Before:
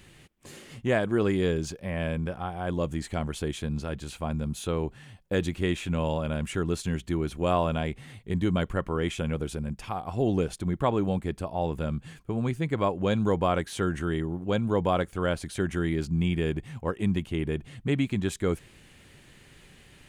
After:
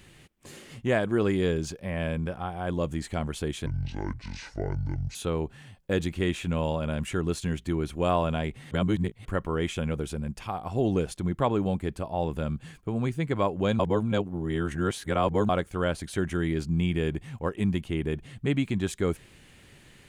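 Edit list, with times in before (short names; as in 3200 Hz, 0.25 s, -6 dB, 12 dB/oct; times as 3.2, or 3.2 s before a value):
3.66–4.57 speed 61%
8.13–8.67 reverse
13.21–14.91 reverse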